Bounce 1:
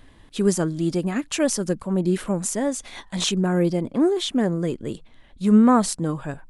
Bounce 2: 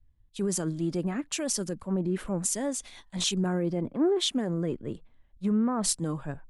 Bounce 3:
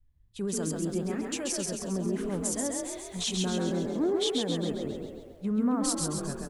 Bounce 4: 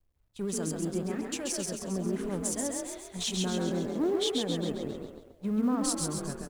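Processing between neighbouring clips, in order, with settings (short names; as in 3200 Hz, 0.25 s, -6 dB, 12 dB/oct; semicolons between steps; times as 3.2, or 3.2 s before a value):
limiter -17.5 dBFS, peak gain reduction 11 dB; three-band expander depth 100%; gain -3 dB
on a send: frequency-shifting echo 0.135 s, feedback 54%, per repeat +37 Hz, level -3.5 dB; on the sum: lo-fi delay 0.129 s, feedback 35%, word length 9-bit, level -12 dB; gain -3.5 dB
G.711 law mismatch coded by A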